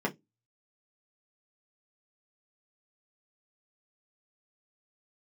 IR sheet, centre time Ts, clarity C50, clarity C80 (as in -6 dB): 9 ms, 21.5 dB, 34.5 dB